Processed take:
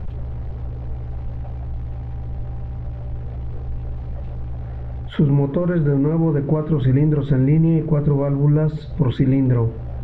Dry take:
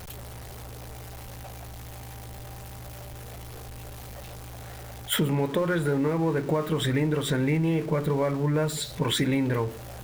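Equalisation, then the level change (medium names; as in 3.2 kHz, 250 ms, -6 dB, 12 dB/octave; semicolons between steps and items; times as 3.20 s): distance through air 200 m; tilt EQ -4 dB/octave; 0.0 dB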